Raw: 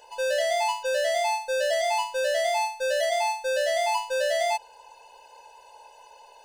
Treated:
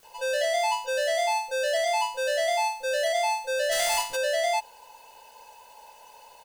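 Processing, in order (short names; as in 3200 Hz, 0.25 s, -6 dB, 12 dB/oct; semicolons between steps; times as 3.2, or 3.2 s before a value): 3.68–4.12 spectral contrast lowered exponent 0.52; bands offset in time lows, highs 30 ms, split 320 Hz; requantised 10-bit, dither triangular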